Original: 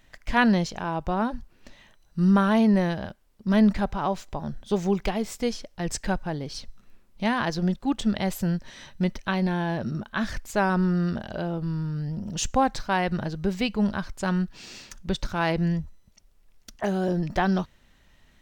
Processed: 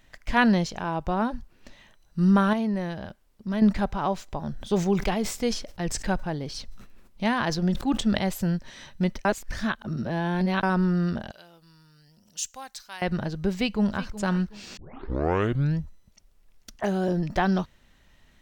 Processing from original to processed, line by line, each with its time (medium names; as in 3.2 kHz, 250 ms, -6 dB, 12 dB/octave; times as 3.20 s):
2.53–3.62 s: compression 1.5:1, threshold -36 dBFS
4.40–8.19 s: decay stretcher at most 84 dB/s
9.25–10.63 s: reverse
11.31–13.02 s: pre-emphasis filter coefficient 0.97
13.54–14.16 s: echo throw 370 ms, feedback 35%, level -15 dB
14.77 s: tape start 1.03 s